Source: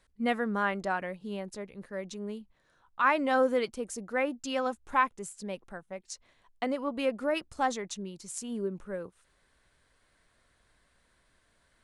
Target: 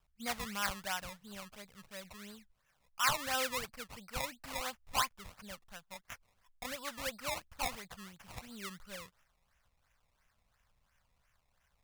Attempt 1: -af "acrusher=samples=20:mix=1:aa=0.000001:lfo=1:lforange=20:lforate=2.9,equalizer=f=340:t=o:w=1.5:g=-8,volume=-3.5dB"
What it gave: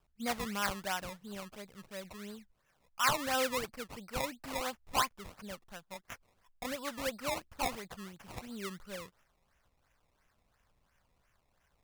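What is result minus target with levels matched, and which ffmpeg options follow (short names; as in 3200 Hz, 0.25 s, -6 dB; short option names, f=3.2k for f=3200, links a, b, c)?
250 Hz band +5.0 dB
-af "acrusher=samples=20:mix=1:aa=0.000001:lfo=1:lforange=20:lforate=2.9,equalizer=f=340:t=o:w=1.5:g=-18.5,volume=-3.5dB"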